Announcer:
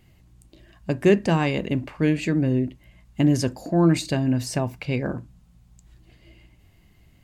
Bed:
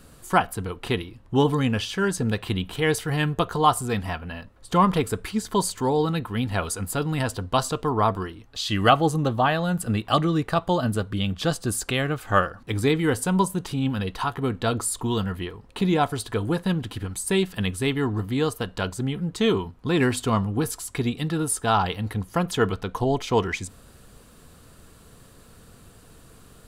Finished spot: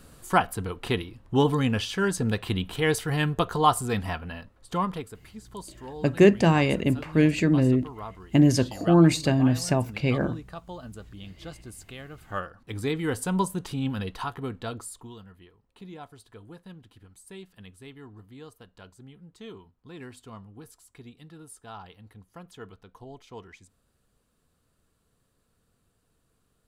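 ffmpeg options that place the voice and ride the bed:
-filter_complex "[0:a]adelay=5150,volume=1.12[s0];[1:a]volume=3.98,afade=t=out:st=4.18:d=0.97:silence=0.158489,afade=t=in:st=12.1:d=1.25:silence=0.211349,afade=t=out:st=13.96:d=1.22:silence=0.133352[s1];[s0][s1]amix=inputs=2:normalize=0"

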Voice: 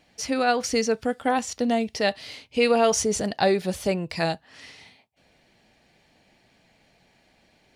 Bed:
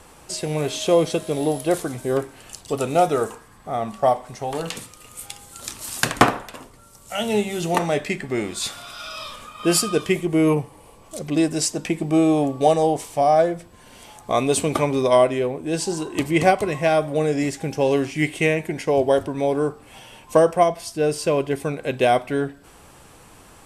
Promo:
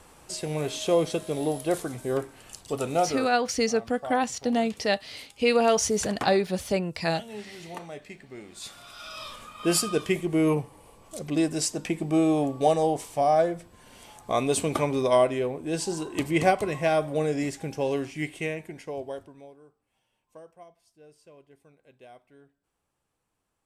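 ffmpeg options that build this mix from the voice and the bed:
-filter_complex "[0:a]adelay=2850,volume=0.841[s0];[1:a]volume=2.51,afade=t=out:st=2.93:d=0.44:silence=0.223872,afade=t=in:st=8.46:d=0.81:silence=0.211349,afade=t=out:st=17.17:d=2.4:silence=0.0421697[s1];[s0][s1]amix=inputs=2:normalize=0"

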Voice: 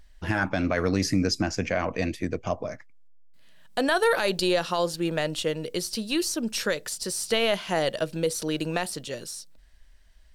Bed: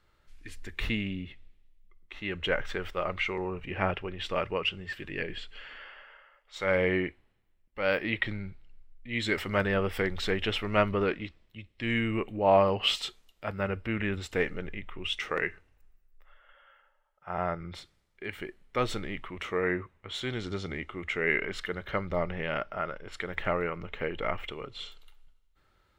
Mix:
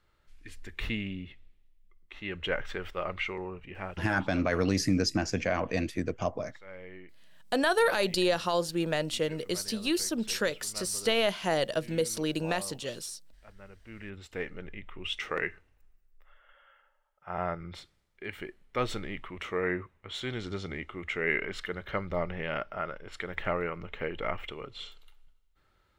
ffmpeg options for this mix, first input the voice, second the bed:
-filter_complex "[0:a]adelay=3750,volume=0.75[s0];[1:a]volume=6.68,afade=t=out:st=3.22:d=0.92:silence=0.125893,afade=t=in:st=13.78:d=1.44:silence=0.112202[s1];[s0][s1]amix=inputs=2:normalize=0"

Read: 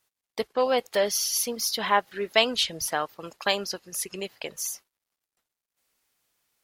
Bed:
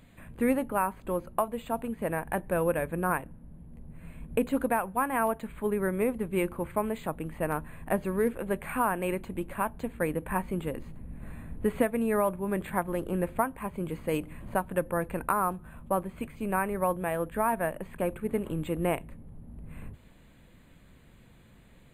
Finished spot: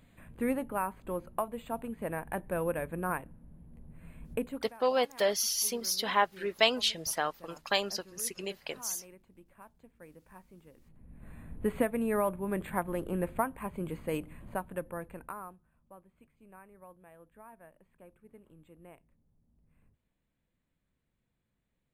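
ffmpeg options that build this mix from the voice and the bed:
-filter_complex "[0:a]adelay=4250,volume=0.631[s0];[1:a]volume=5.96,afade=t=out:st=4.33:d=0.36:silence=0.11885,afade=t=in:st=10.78:d=0.91:silence=0.0944061,afade=t=out:st=13.87:d=1.81:silence=0.0749894[s1];[s0][s1]amix=inputs=2:normalize=0"

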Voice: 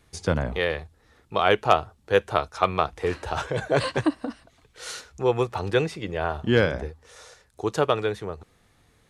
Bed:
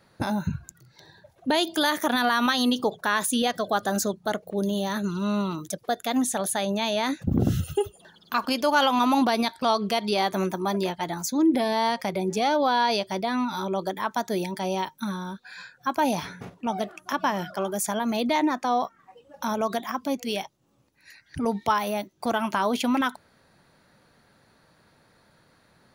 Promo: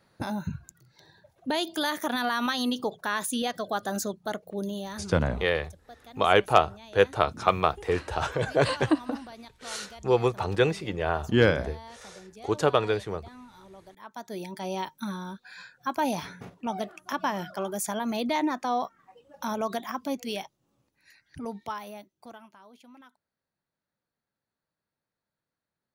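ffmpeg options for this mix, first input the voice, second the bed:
-filter_complex "[0:a]adelay=4850,volume=0.944[s0];[1:a]volume=4.73,afade=t=out:st=4.52:d=0.82:silence=0.141254,afade=t=in:st=13.96:d=0.91:silence=0.11885,afade=t=out:st=20.14:d=2.39:silence=0.0530884[s1];[s0][s1]amix=inputs=2:normalize=0"

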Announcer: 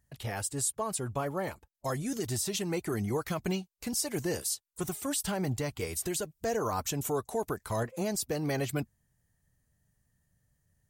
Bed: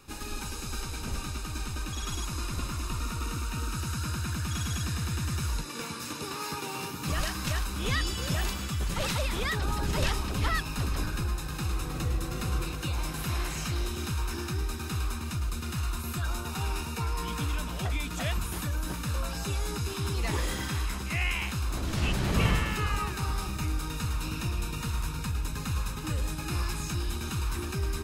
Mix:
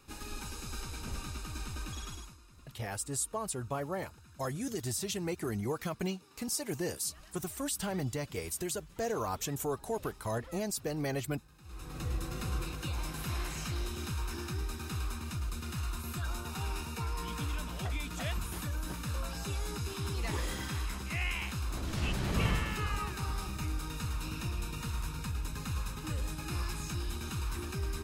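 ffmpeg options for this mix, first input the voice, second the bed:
-filter_complex "[0:a]adelay=2550,volume=0.708[s0];[1:a]volume=5.31,afade=t=out:st=1.91:d=0.47:silence=0.105925,afade=t=in:st=11.63:d=0.51:silence=0.1[s1];[s0][s1]amix=inputs=2:normalize=0"

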